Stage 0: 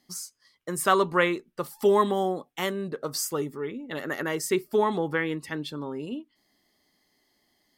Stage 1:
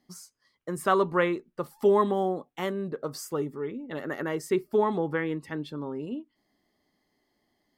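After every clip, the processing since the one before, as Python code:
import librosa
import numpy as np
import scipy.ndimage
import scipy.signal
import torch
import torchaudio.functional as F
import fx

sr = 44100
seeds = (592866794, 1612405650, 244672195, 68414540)

y = fx.high_shelf(x, sr, hz=2100.0, db=-11.0)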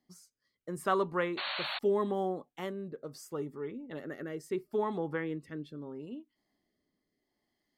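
y = fx.rotary(x, sr, hz=0.75)
y = fx.spec_paint(y, sr, seeds[0], shape='noise', start_s=1.37, length_s=0.42, low_hz=530.0, high_hz=4500.0, level_db=-31.0)
y = F.gain(torch.from_numpy(y), -5.5).numpy()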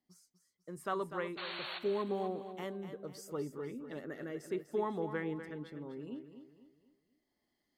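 y = fx.rider(x, sr, range_db=3, speed_s=2.0)
y = fx.echo_feedback(y, sr, ms=247, feedback_pct=39, wet_db=-10)
y = F.gain(torch.from_numpy(y), -4.5).numpy()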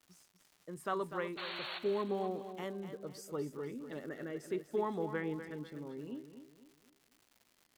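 y = fx.dmg_crackle(x, sr, seeds[1], per_s=260.0, level_db=-52.0)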